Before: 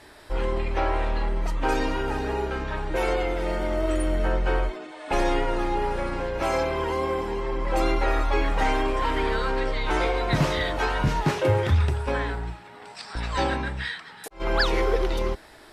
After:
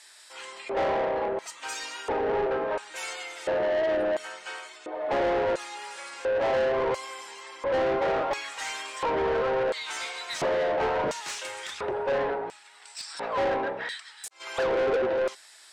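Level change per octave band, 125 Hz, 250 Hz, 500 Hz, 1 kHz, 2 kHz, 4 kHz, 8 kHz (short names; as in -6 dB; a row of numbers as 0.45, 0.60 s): -19.0, -7.5, +1.0, -3.0, -3.5, -3.0, +3.5 dB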